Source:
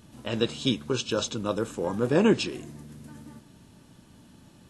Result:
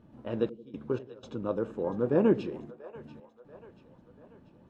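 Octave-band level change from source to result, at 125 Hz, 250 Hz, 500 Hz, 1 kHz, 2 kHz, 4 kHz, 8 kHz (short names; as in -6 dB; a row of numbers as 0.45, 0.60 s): -5.5 dB, -4.0 dB, -2.0 dB, -6.0 dB, -11.5 dB, under -20 dB, under -25 dB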